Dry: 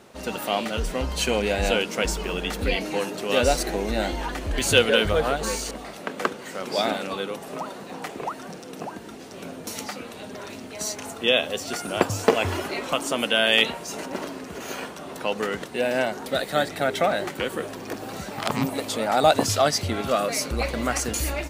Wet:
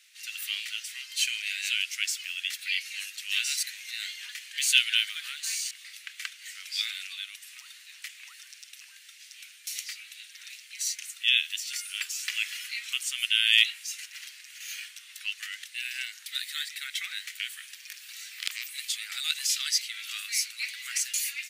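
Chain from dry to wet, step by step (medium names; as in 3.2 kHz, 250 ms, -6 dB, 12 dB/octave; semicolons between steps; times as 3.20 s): steep high-pass 2 kHz 36 dB/octave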